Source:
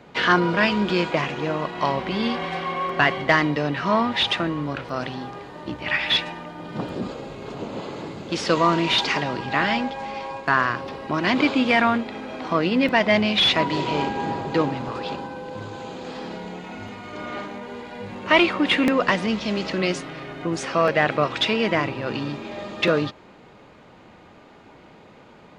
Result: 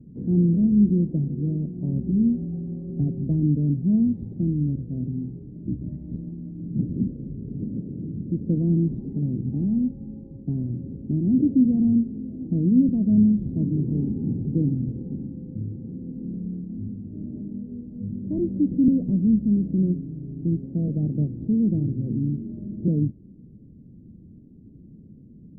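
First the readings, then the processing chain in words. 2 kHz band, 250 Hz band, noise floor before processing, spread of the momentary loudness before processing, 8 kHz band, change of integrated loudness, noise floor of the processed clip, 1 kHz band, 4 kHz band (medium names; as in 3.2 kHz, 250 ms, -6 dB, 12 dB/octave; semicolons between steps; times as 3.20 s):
under -40 dB, +4.0 dB, -49 dBFS, 16 LU, under -35 dB, -2.0 dB, -47 dBFS, under -40 dB, under -40 dB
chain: inverse Chebyshev low-pass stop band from 1.1 kHz, stop band 70 dB; trim +8 dB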